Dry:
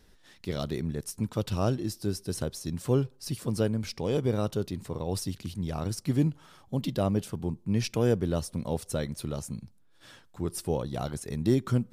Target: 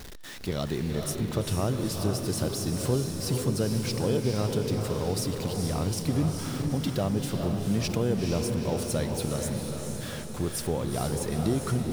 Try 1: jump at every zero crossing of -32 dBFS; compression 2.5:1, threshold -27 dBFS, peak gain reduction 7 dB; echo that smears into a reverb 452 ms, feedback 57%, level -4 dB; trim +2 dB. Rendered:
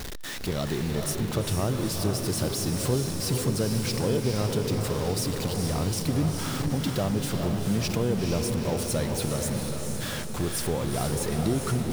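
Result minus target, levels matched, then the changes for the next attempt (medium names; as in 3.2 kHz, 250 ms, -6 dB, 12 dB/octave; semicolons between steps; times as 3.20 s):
jump at every zero crossing: distortion +7 dB
change: jump at every zero crossing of -40 dBFS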